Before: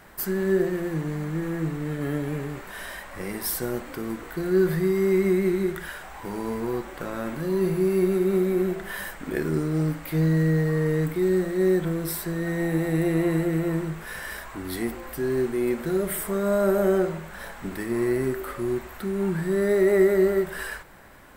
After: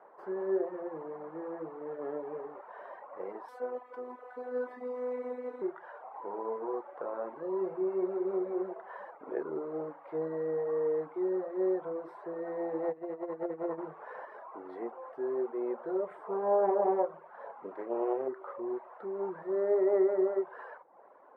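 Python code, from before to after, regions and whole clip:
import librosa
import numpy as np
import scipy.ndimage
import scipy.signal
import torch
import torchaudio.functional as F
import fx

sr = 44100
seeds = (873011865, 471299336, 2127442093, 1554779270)

y = fx.chain(x, sr, fx.peak_eq(hz=13000.0, db=13.5, octaves=2.6),
    fx.robotise(hz=249.0), at=(3.48, 5.62))
y = fx.chain(y, sr, fx.low_shelf(hz=140.0, db=3.0),
    fx.over_compress(threshold_db=-25.0, ratio=-0.5), at=(12.83, 14.25))
y = fx.chain(y, sr, fx.highpass(hz=72.0, slope=24),
    fx.low_shelf(hz=140.0, db=5.0),
    fx.doppler_dist(depth_ms=0.48), at=(16.08, 18.28))
y = fx.dereverb_blind(y, sr, rt60_s=0.63)
y = scipy.signal.sosfilt(scipy.signal.cheby1(2, 1.0, [460.0, 1000.0], 'bandpass', fs=sr, output='sos'), y)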